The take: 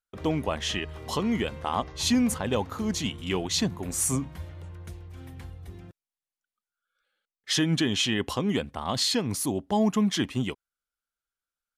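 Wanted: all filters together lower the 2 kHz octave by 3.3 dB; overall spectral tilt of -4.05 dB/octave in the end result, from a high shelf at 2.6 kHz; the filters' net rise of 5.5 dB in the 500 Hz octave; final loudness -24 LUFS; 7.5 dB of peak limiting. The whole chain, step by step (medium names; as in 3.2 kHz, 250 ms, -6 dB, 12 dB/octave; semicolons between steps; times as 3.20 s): peaking EQ 500 Hz +7 dB; peaking EQ 2 kHz -6.5 dB; treble shelf 2.6 kHz +4 dB; trim +3.5 dB; peak limiter -13.5 dBFS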